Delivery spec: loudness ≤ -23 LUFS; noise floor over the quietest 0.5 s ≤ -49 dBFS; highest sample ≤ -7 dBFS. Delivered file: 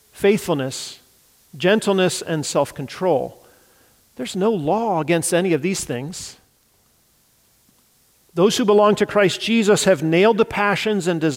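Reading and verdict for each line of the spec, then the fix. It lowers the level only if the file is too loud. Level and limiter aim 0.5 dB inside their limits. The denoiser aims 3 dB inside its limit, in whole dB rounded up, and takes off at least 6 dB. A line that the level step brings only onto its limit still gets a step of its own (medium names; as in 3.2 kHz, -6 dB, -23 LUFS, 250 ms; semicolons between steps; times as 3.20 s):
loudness -19.0 LUFS: fail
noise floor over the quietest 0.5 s -60 dBFS: pass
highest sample -5.5 dBFS: fail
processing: trim -4.5 dB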